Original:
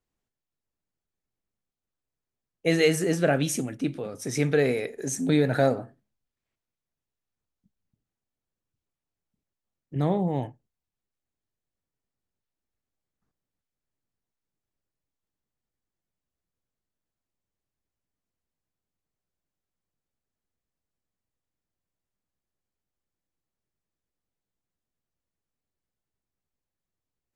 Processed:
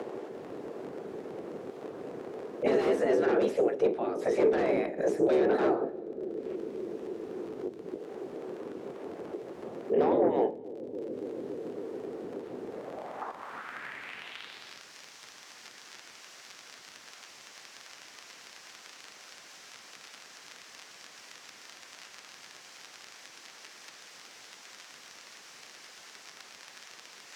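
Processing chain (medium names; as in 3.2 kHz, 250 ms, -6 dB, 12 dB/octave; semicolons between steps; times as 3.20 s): octave divider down 2 oct, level +3 dB; spectral gate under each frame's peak -15 dB weak; in parallel at -2.5 dB: upward compressor, threshold -41 dBFS; on the sum: crackle 35 per s -46 dBFS; sine folder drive 14 dB, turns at -11 dBFS; bucket-brigade echo 282 ms, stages 1024, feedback 79%, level -23 dB; two-slope reverb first 0.62 s, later 2 s, from -16 dB, DRR 17.5 dB; band-pass sweep 420 Hz -> 5.6 kHz, 12.66–14.83 s; three bands compressed up and down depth 70%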